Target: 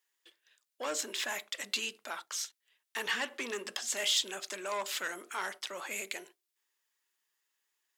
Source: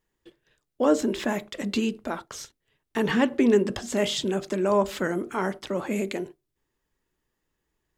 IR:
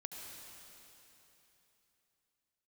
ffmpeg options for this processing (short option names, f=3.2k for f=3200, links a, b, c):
-filter_complex "[0:a]asplit=2[a][b];[b]highpass=f=720:p=1,volume=14dB,asoftclip=type=tanh:threshold=-9.5dB[c];[a][c]amix=inputs=2:normalize=0,lowpass=f=2.5k:p=1,volume=-6dB,aderivative,volume=3.5dB"